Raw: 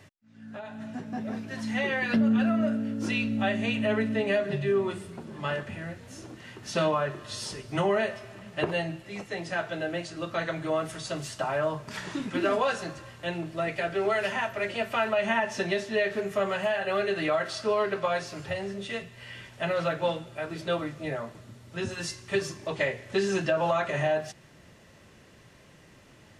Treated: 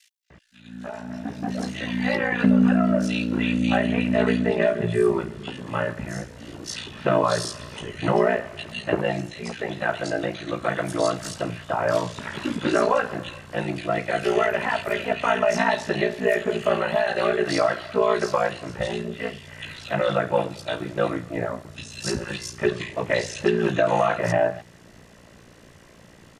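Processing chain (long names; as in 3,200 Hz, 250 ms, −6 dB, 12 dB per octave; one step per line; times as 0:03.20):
ring modulation 29 Hz
multiband delay without the direct sound highs, lows 300 ms, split 2,600 Hz
level +8.5 dB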